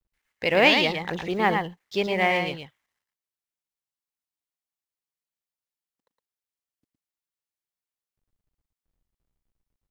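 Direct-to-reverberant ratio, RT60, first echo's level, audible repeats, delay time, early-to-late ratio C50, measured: none, none, -5.0 dB, 1, 0.113 s, none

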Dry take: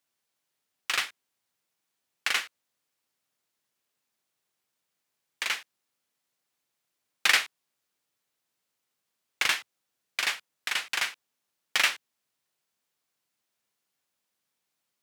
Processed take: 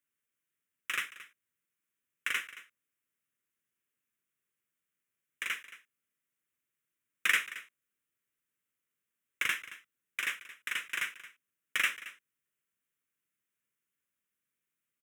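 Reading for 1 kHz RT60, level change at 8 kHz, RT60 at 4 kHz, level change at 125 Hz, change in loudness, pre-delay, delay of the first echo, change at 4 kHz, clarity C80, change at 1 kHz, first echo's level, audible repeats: none, -8.5 dB, none, n/a, -6.0 dB, none, 0.223 s, -10.0 dB, none, -8.0 dB, -16.5 dB, 1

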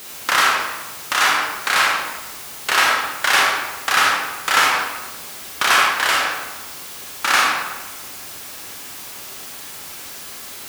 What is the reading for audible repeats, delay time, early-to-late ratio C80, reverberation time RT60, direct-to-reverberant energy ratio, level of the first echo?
none, none, 3.0 dB, 1.2 s, -2.5 dB, none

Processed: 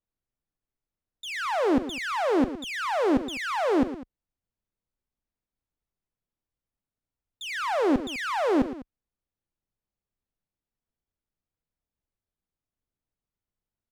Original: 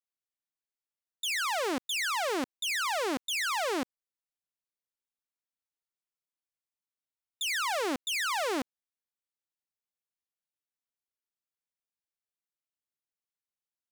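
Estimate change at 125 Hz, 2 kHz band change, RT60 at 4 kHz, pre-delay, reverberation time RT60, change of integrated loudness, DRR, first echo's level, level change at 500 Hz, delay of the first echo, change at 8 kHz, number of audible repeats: +16.5 dB, -0.5 dB, none, none, none, +4.0 dB, none, -17.0 dB, +8.5 dB, 43 ms, -9.0 dB, 3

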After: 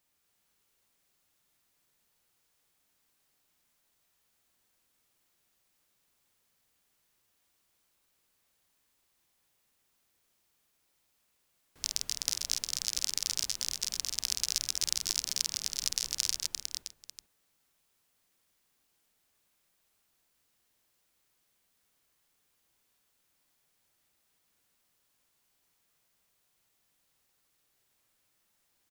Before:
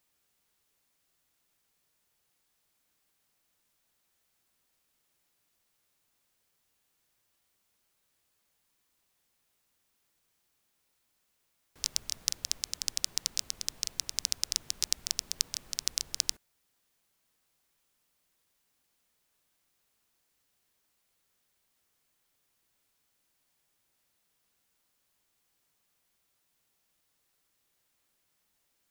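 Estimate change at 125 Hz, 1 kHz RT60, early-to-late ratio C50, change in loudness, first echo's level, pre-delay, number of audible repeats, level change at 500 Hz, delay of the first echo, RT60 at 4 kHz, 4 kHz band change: +1.5 dB, none, none, +1.0 dB, -4.5 dB, none, 6, +1.5 dB, 50 ms, none, +1.5 dB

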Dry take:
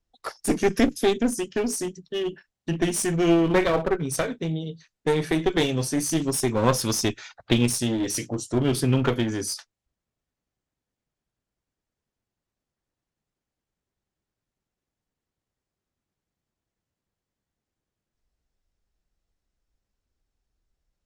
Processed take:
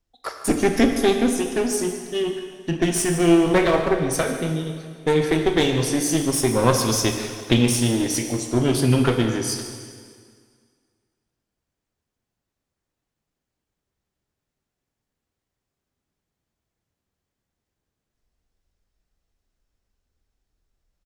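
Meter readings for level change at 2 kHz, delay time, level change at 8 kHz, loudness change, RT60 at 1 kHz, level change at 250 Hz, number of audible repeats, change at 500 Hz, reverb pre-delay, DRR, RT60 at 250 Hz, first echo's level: +4.0 dB, 0.15 s, +3.5 dB, +3.5 dB, 2.0 s, +3.5 dB, 1, +3.5 dB, 18 ms, 4.5 dB, 2.0 s, -16.0 dB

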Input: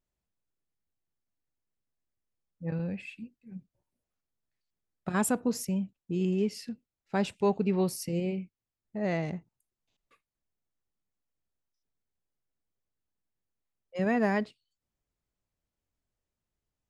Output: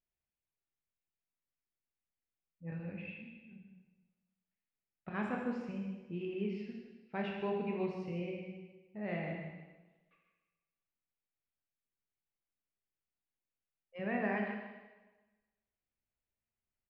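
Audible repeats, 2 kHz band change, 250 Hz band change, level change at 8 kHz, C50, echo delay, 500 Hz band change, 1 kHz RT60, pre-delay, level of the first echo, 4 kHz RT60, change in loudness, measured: 1, -4.5 dB, -8.5 dB, under -35 dB, 2.0 dB, 0.155 s, -8.0 dB, 1.2 s, 15 ms, -9.0 dB, 1.2 s, -8.5 dB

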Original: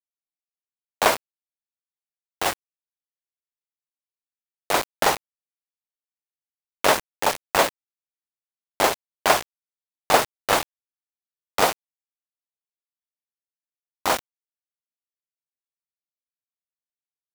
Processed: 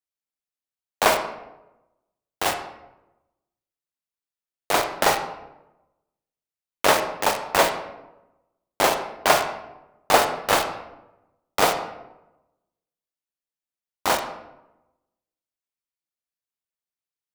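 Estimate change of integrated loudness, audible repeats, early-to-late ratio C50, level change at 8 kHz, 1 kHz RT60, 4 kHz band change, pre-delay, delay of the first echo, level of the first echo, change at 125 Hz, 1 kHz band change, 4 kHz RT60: +0.5 dB, none, 8.0 dB, 0.0 dB, 0.90 s, +0.5 dB, 29 ms, none, none, +1.0 dB, +1.0 dB, 0.55 s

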